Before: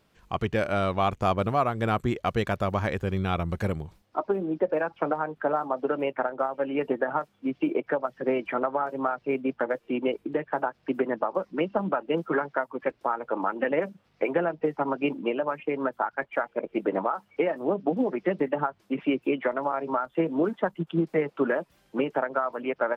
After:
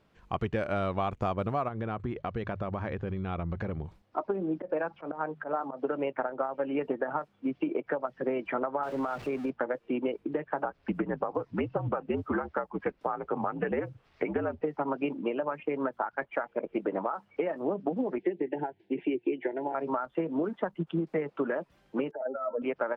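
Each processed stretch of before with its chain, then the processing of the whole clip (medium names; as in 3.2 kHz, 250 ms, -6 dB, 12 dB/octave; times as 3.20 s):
1.68–3.84 s: distance through air 160 m + hum notches 50/100/150 Hz + compression 4:1, threshold -29 dBFS
4.56–5.82 s: slow attack 124 ms + hum notches 50/100/150/200 Hz
8.83–9.50 s: jump at every zero crossing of -37 dBFS + compression, threshold -26 dBFS
10.64–14.62 s: frequency shift -69 Hz + tape noise reduction on one side only encoder only
18.18–19.75 s: Butterworth band-stop 1.2 kHz, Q 1.4 + cabinet simulation 110–3700 Hz, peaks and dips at 150 Hz -3 dB, 220 Hz -8 dB, 360 Hz +10 dB, 590 Hz -8 dB
22.11–22.62 s: spectral contrast enhancement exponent 2.9 + de-hum 266.5 Hz, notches 37 + compressor with a negative ratio -30 dBFS, ratio -0.5
whole clip: low-pass 2.5 kHz 6 dB/octave; compression, threshold -26 dBFS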